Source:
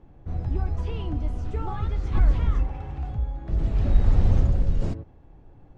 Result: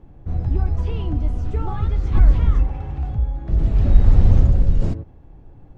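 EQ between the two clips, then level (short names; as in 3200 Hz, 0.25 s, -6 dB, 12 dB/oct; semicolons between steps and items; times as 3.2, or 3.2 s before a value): low shelf 330 Hz +4.5 dB; +2.0 dB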